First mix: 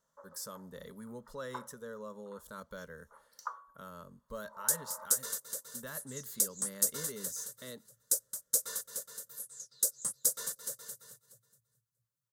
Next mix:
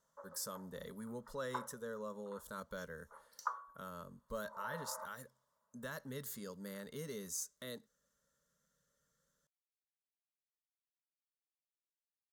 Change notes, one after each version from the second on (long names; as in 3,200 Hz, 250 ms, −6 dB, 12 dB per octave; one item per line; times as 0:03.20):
first sound: send +6.0 dB
second sound: muted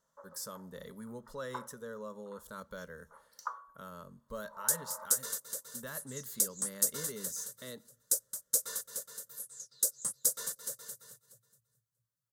speech: send on
second sound: unmuted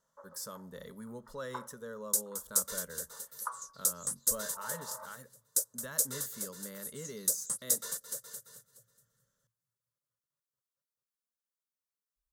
second sound: entry −2.55 s